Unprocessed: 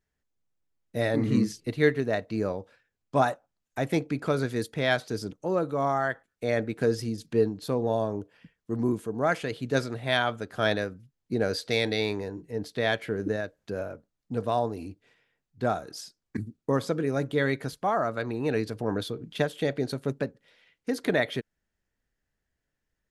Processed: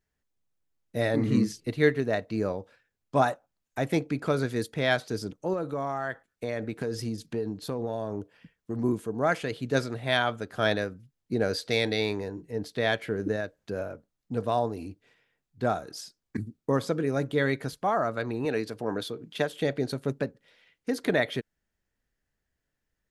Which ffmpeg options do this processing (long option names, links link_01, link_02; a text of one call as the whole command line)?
ffmpeg -i in.wav -filter_complex "[0:a]asettb=1/sr,asplit=3[link_01][link_02][link_03];[link_01]atrim=end=5.534[link_04];[link_02]atrim=start=5.53:end=8.84,asetpts=PTS-STARTPTS,afade=type=in:duration=0.004:curve=qsin,afade=type=out:start_time=3.306:duration=0.004:curve=qsin,acompressor=threshold=-26dB:ratio=6:attack=3.2:release=140:knee=1:detection=peak[link_05];[link_03]atrim=start=8.836[link_06];[link_04][link_05]acrossfade=duration=0.004:curve1=hsin:curve2=qsin[link_07];[link_07][link_06]acrossfade=duration=0.004:curve1=qsin:curve2=hsin,asettb=1/sr,asplit=3[link_08][link_09][link_10];[link_08]atrim=end=18.454[link_11];[link_09]atrim=start=18.45:end=19.52,asetpts=PTS-STARTPTS,afade=type=in:duration=0.004:curve=qsin,afade=type=out:start_time=1.066:duration=0.004:curve=qsin,highpass=frequency=240:poles=1[link_12];[link_10]atrim=start=19.516[link_13];[link_11][link_12]acrossfade=duration=0.004:curve1=hsin:curve2=qsin[link_14];[link_14][link_13]acrossfade=duration=0.004:curve1=qsin:curve2=hsin" out.wav